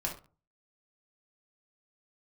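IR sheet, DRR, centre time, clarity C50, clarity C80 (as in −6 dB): −1.0 dB, 20 ms, 8.0 dB, 14.5 dB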